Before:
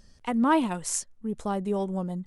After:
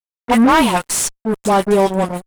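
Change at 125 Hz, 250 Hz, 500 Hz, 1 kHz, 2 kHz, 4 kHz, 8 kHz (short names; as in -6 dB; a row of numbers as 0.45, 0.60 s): +9.5, +10.5, +14.5, +13.5, +15.0, +17.0, +12.0 dB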